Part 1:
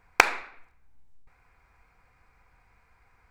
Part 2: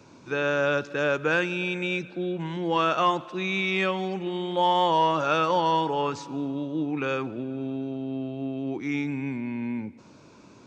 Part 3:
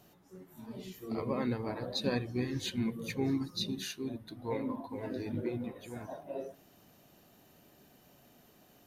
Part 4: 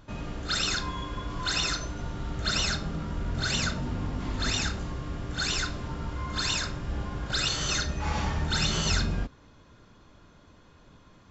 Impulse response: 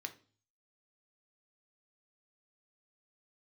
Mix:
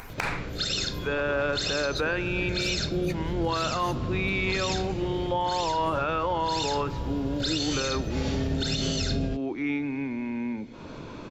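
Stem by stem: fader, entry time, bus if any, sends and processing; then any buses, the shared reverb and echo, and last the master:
+1.0 dB, 0.00 s, no send, no processing
+1.0 dB, 0.75 s, no send, three-way crossover with the lows and the highs turned down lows −12 dB, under 180 Hz, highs −21 dB, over 3,600 Hz
+0.5 dB, 0.00 s, no send, harmonic-percussive split with one part muted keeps percussive
−3.0 dB, 0.10 s, no send, octave-band graphic EQ 125/500/1,000/4,000 Hz +7/+10/−11/+6 dB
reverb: not used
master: upward compression, threshold −29 dBFS; brickwall limiter −18 dBFS, peak gain reduction 16 dB

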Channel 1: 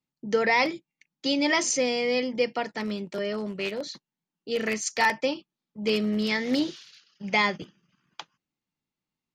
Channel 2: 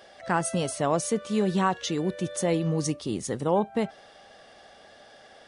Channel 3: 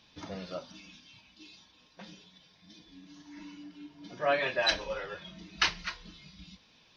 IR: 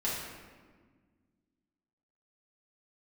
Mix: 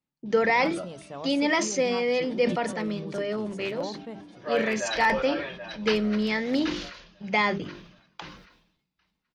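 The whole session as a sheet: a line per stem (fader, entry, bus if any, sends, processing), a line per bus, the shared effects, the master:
+1.0 dB, 0.00 s, no send, no echo send, no processing
−13.0 dB, 0.30 s, no send, echo send −17.5 dB, no processing
−1.5 dB, 0.25 s, no send, echo send −9 dB, pitch vibrato 0.34 Hz 35 cents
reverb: not used
echo: repeating echo 779 ms, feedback 27%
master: high-shelf EQ 3,900 Hz −10 dB; mains-hum notches 50/100/150/200/250/300/350/400 Hz; level that may fall only so fast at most 67 dB per second

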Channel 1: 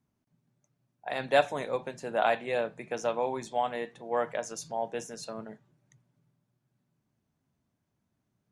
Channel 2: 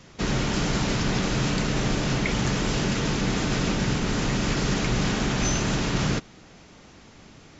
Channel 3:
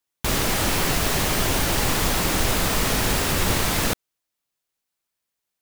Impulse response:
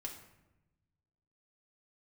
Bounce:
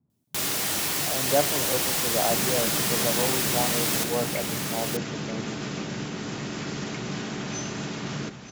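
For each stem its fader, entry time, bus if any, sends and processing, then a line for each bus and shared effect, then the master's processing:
−1.0 dB, 0.00 s, no send, no echo send, Bessel low-pass filter 1,100 Hz; spectral tilt −3.5 dB per octave
−10.0 dB, 2.10 s, send −4.5 dB, echo send −8 dB, no processing
−7.0 dB, 0.10 s, send −5.5 dB, echo send −8 dB, high-shelf EQ 2,800 Hz +9.5 dB; automatic ducking −7 dB, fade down 0.35 s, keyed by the first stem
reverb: on, RT60 0.95 s, pre-delay 3 ms
echo: single-tap delay 933 ms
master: high-pass filter 120 Hz 12 dB per octave

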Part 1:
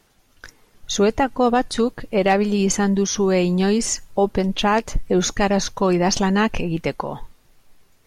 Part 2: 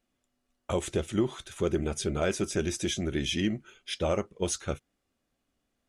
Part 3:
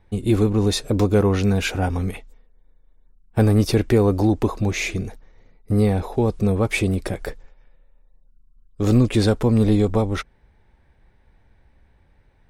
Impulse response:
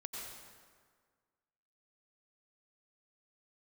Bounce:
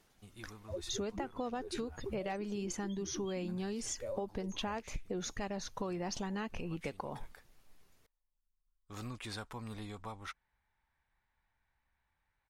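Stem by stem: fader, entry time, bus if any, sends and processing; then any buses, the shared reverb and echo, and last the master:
−9.5 dB, 0.00 s, no send, no processing
−3.0 dB, 0.00 s, no send, spectral peaks only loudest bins 2
−16.0 dB, 0.10 s, no send, low shelf with overshoot 690 Hz −11.5 dB, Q 1.5; automatic ducking −7 dB, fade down 0.50 s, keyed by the first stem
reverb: not used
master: downward compressor 6 to 1, threshold −36 dBFS, peak gain reduction 13.5 dB

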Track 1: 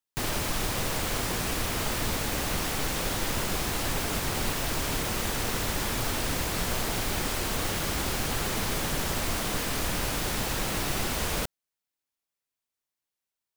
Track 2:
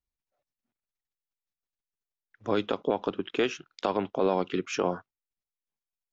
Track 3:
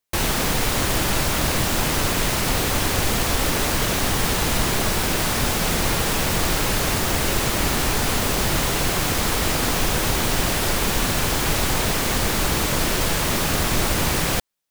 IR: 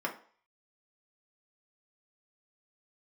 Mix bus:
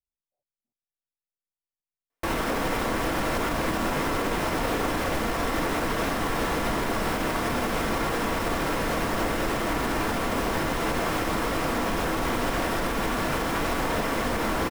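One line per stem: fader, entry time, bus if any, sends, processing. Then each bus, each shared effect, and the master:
−2.5 dB, 2.40 s, no send, lower of the sound and its delayed copy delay 5.3 ms
−8.0 dB, 0.00 s, no send, Butterworth low-pass 960 Hz
−6.0 dB, 2.10 s, send −3.5 dB, no processing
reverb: on, RT60 0.45 s, pre-delay 3 ms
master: high-shelf EQ 3,000 Hz −11 dB; brickwall limiter −17 dBFS, peak gain reduction 5.5 dB

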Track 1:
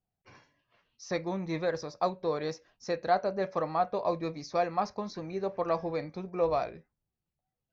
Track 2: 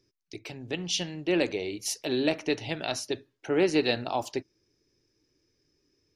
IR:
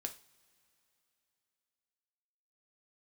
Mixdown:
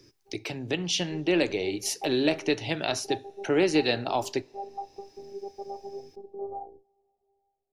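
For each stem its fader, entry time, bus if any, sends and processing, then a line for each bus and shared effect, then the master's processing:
−10.5 dB, 0.00 s, send −10.5 dB, Butterworth low-pass 900 Hz 96 dB per octave; phases set to zero 398 Hz
+0.5 dB, 0.00 s, send −9.5 dB, no processing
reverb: on, pre-delay 3 ms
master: multiband upward and downward compressor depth 40%

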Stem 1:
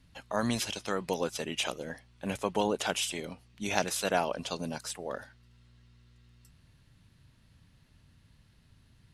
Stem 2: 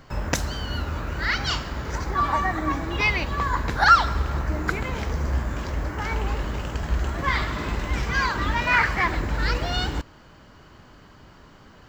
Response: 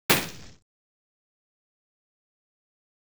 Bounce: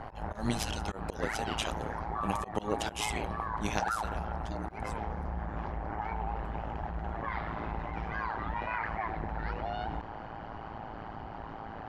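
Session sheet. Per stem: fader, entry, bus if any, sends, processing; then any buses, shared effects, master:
0:03.67 0 dB → 0:04.01 −12 dB, 0.00 s, no send, low-shelf EQ 160 Hz +8 dB
−20.0 dB, 0.00 s, no send, low-pass filter 2,100 Hz 12 dB per octave; parametric band 790 Hz +15 dB 0.39 octaves; envelope flattener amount 70%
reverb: not used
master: volume swells 134 ms; amplitude modulation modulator 110 Hz, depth 70%

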